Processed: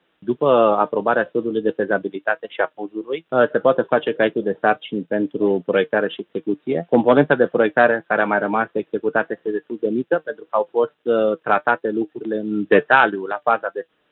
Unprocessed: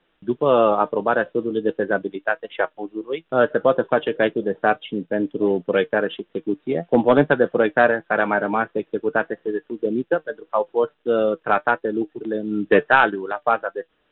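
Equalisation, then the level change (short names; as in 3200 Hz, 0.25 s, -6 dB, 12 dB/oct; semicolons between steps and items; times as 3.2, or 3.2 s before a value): HPF 87 Hz; +1.5 dB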